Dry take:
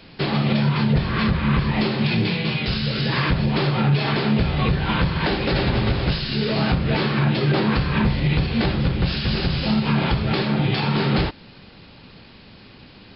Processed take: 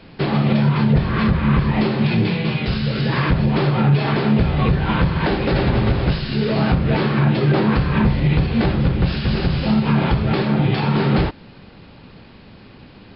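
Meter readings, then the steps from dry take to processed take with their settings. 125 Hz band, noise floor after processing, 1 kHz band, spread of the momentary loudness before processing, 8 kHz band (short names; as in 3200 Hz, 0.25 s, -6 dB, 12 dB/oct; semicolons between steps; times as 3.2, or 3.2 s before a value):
+3.5 dB, -43 dBFS, +2.5 dB, 3 LU, n/a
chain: high shelf 3000 Hz -11.5 dB; gain +3.5 dB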